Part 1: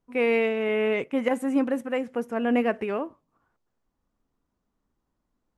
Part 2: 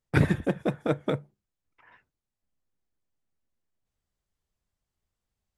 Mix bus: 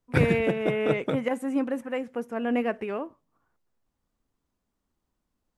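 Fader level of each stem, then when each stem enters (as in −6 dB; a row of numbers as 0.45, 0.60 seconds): −3.0, −1.0 decibels; 0.00, 0.00 seconds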